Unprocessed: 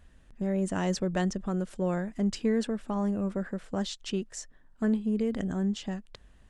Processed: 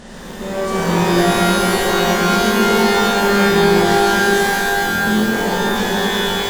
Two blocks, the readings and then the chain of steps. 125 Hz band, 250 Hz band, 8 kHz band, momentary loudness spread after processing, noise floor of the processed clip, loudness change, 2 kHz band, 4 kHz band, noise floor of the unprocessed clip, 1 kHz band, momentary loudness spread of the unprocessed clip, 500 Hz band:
+11.5 dB, +11.0 dB, +19.5 dB, 5 LU, -31 dBFS, +16.0 dB, +27.0 dB, +23.0 dB, -58 dBFS, +24.5 dB, 7 LU, +17.0 dB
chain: spectral levelling over time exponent 0.4; buffer glitch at 0.77/3.42/4.80 s, samples 1024, times 10; pitch-shifted reverb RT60 3.4 s, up +12 st, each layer -2 dB, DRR -8 dB; trim -2 dB

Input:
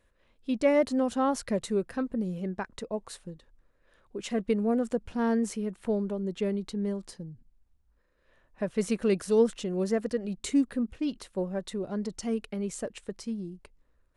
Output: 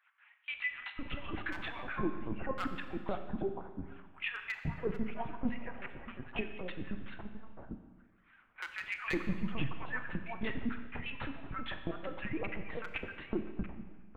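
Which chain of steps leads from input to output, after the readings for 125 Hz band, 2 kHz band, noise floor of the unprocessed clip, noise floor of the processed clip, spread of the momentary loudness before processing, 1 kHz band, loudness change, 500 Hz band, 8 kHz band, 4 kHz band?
-4.0 dB, +4.5 dB, -69 dBFS, -65 dBFS, 13 LU, -6.0 dB, -10.0 dB, -14.0 dB, under -25 dB, -3.5 dB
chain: harmonic-percussive separation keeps percussive; bass shelf 380 Hz -11.5 dB; mistuned SSB -250 Hz 210–2900 Hz; LPC vocoder at 8 kHz pitch kept; hard clipper -29 dBFS, distortion -15 dB; bands offset in time highs, lows 510 ms, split 1.1 kHz; compression 2:1, threshold -51 dBFS, peak gain reduction 10.5 dB; Schroeder reverb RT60 1.4 s, combs from 29 ms, DRR 7.5 dB; trim +14 dB

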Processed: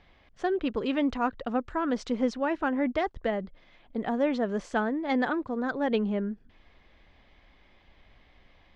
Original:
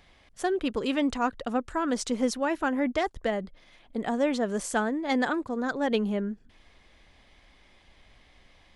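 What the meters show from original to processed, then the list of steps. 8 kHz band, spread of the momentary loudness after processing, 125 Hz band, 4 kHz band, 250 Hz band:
under -10 dB, 6 LU, 0.0 dB, -4.5 dB, -0.5 dB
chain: distance through air 190 m

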